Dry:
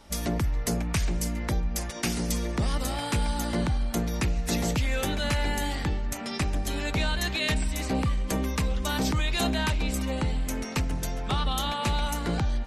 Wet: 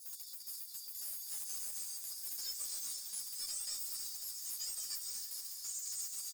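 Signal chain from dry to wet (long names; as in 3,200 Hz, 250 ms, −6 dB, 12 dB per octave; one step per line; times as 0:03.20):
Butterworth high-pass 2,100 Hz 72 dB per octave
parametric band 10,000 Hz +14 dB 1.4 octaves
comb filter 1.2 ms, depth 73%
dynamic equaliser 4,200 Hz, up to +4 dB, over −39 dBFS, Q 1.1
downward compressor 10 to 1, threshold −34 dBFS, peak gain reduction 19.5 dB
brickwall limiter −26.5 dBFS, peak gain reduction 10 dB
soft clipping −38.5 dBFS, distortion −10 dB
feedback delay with all-pass diffusion 511 ms, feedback 67%, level −7.5 dB
wrong playback speed 7.5 ips tape played at 15 ips
string-ensemble chorus
level +4.5 dB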